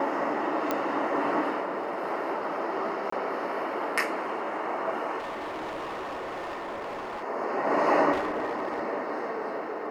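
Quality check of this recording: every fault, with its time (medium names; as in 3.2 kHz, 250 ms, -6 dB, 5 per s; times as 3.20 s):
0.71 s: pop -13 dBFS
3.10–3.12 s: dropout 24 ms
5.18–7.24 s: clipped -32 dBFS
8.12–8.80 s: clipped -25 dBFS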